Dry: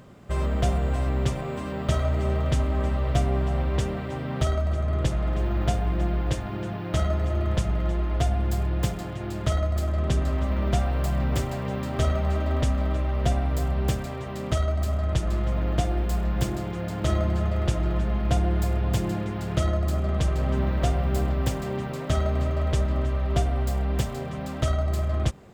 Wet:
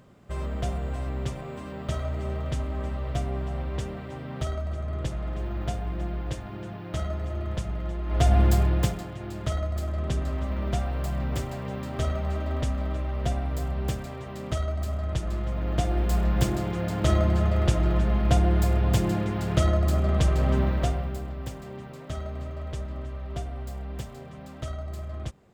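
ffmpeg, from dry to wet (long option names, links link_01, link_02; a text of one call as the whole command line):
ffmpeg -i in.wav -af "volume=12.5dB,afade=type=in:start_time=8.04:duration=0.35:silence=0.237137,afade=type=out:start_time=8.39:duration=0.68:silence=0.298538,afade=type=in:start_time=15.57:duration=0.61:silence=0.501187,afade=type=out:start_time=20.53:duration=0.66:silence=0.251189" out.wav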